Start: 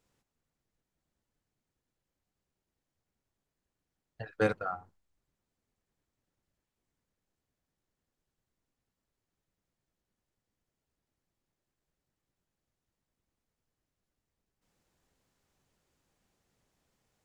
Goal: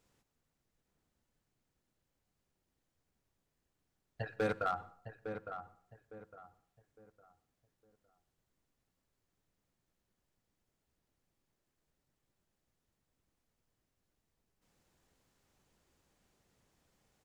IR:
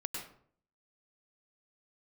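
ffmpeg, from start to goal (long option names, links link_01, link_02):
-filter_complex "[0:a]alimiter=limit=-24dB:level=0:latency=1:release=72,asoftclip=type=hard:threshold=-28dB,asplit=2[link_01][link_02];[link_02]adelay=858,lowpass=frequency=1600:poles=1,volume=-8dB,asplit=2[link_03][link_04];[link_04]adelay=858,lowpass=frequency=1600:poles=1,volume=0.33,asplit=2[link_05][link_06];[link_06]adelay=858,lowpass=frequency=1600:poles=1,volume=0.33,asplit=2[link_07][link_08];[link_08]adelay=858,lowpass=frequency=1600:poles=1,volume=0.33[link_09];[link_01][link_03][link_05][link_07][link_09]amix=inputs=5:normalize=0,asplit=2[link_10][link_11];[1:a]atrim=start_sample=2205[link_12];[link_11][link_12]afir=irnorm=-1:irlink=0,volume=-17.5dB[link_13];[link_10][link_13]amix=inputs=2:normalize=0,volume=1dB"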